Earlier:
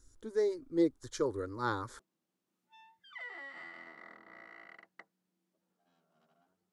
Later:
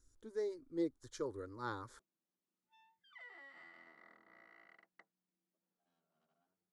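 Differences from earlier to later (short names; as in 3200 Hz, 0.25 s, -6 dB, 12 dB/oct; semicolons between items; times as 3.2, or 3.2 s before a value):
speech -8.5 dB; background -10.0 dB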